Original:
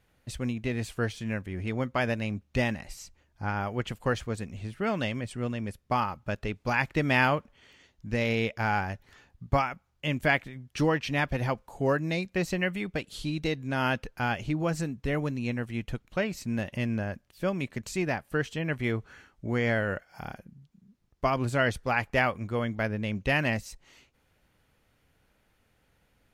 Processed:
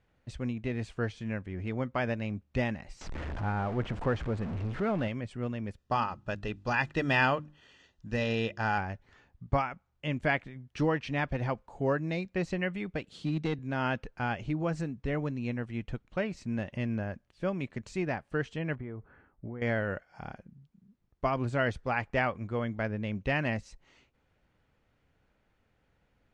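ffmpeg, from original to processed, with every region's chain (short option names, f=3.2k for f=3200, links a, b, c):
-filter_complex "[0:a]asettb=1/sr,asplit=3[a][b][c];[a]atrim=end=3.014[d];[b]atrim=start=3.01:end=5.08,asetpts=PTS-STARTPTS,afade=t=in:d=0.004:c=qsin,afade=t=out:st=2.066:d=0.004:c=qsin,aeval=exprs='val(0)+0.5*0.0335*sgn(val(0))':c=same,lowpass=f=1.5k:p=1,acompressor=mode=upward:threshold=-30dB:ratio=2.5:attack=3.2:release=140:knee=2.83:detection=peak[e];[c]atrim=start=5.076[f];[d][e]acrossfade=d=0.004:c1=hsin:c2=qsin[g];[g][f]acrossfade=d=0.004:c1=qsin:c2=hsin,asettb=1/sr,asplit=3[h][i][j];[h]atrim=end=5.784[k];[i]atrim=start=5.78:end=8.78,asetpts=PTS-STARTPTS,afade=t=in:d=0.004:c=qsin,afade=t=out:st=2.996:d=0.004:c=qsin,asuperstop=centerf=2200:order=12:qfactor=7.2,highshelf=f=2.1k:g=7.5,bandreject=f=50:t=h:w=6,bandreject=f=100:t=h:w=6,bandreject=f=150:t=h:w=6,bandreject=f=200:t=h:w=6,bandreject=f=250:t=h:w=6,bandreject=f=300:t=h:w=6,bandreject=f=350:t=h:w=6[l];[j]atrim=start=8.776[m];[k][l]acrossfade=d=0.004:c1=hsin:c2=qsin[n];[n][m]acrossfade=d=0.004:c1=qsin:c2=hsin,asettb=1/sr,asplit=3[o][p][q];[o]atrim=end=13.134[r];[p]atrim=start=13.13:end=13.59,asetpts=PTS-STARTPTS,afade=t=in:d=0.004:c=qsin,afade=t=out:st=0.456:d=0.004:c=qsin,highpass=f=170:t=q:w=1.9,volume=22dB,asoftclip=hard,volume=-22dB[s];[q]atrim=start=13.586[t];[r][s]acrossfade=d=0.004:c1=hsin:c2=qsin[u];[u][t]acrossfade=d=0.004:c1=qsin:c2=hsin,asettb=1/sr,asplit=3[v][w][x];[v]atrim=end=18.754[y];[w]atrim=start=18.75:end=19.62,asetpts=PTS-STARTPTS,afade=t=in:d=0.004:c=qsin,afade=t=out:st=0.866:d=0.004:c=qsin,lowpass=1.3k,acompressor=threshold=-32dB:ratio=12:attack=3.2:release=140:knee=1:detection=peak[z];[x]atrim=start=19.616[aa];[y][z]acrossfade=d=0.004:c1=hsin:c2=qsin[ab];[ab][aa]acrossfade=d=0.004:c1=qsin:c2=hsin,lowpass=f=8.4k:w=0.5412,lowpass=f=8.4k:w=1.3066,highshelf=f=3.7k:g=-10.5,volume=-2.5dB"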